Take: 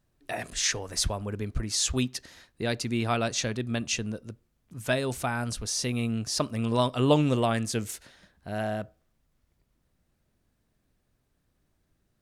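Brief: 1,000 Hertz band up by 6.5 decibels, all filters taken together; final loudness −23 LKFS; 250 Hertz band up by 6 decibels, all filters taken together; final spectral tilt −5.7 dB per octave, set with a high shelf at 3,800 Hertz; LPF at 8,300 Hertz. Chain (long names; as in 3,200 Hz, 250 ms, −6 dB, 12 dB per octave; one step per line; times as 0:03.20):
low-pass filter 8,300 Hz
parametric band 250 Hz +6.5 dB
parametric band 1,000 Hz +8.5 dB
high-shelf EQ 3,800 Hz −7 dB
level +2.5 dB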